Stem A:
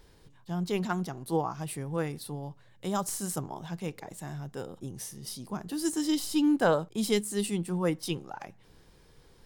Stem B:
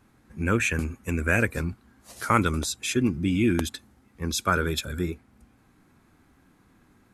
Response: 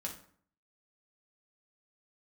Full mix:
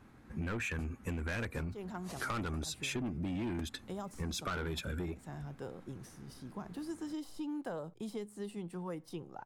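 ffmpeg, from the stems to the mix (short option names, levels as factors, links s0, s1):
-filter_complex "[0:a]acrossover=split=520|1300|6800[s0][s1][s2][s3];[s0]acompressor=threshold=0.0158:ratio=4[s4];[s1]acompressor=threshold=0.0112:ratio=4[s5];[s2]acompressor=threshold=0.00282:ratio=4[s6];[s3]acompressor=threshold=0.00316:ratio=4[s7];[s4][s5][s6][s7]amix=inputs=4:normalize=0,adelay=1050,volume=0.596[s8];[1:a]acontrast=37,volume=0.668,asplit=2[s9][s10];[s10]apad=whole_len=463337[s11];[s8][s11]sidechaincompress=threshold=0.0708:ratio=8:attack=16:release=433[s12];[s12][s9]amix=inputs=2:normalize=0,highshelf=f=4600:g=-9,asoftclip=type=tanh:threshold=0.0794,acompressor=threshold=0.0178:ratio=10"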